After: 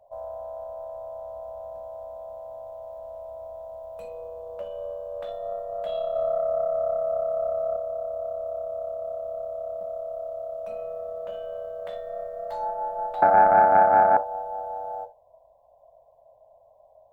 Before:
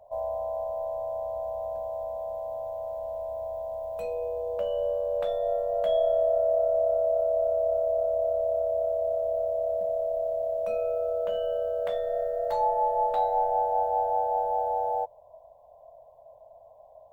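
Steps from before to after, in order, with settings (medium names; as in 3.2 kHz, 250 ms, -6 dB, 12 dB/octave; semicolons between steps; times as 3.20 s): 6.15–7.76 s: comb 1.5 ms, depth 56%; 13.22–14.17 s: high-order bell 860 Hz +14.5 dB; reverberation, pre-delay 3 ms, DRR 8 dB; loudspeaker Doppler distortion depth 0.14 ms; trim -4.5 dB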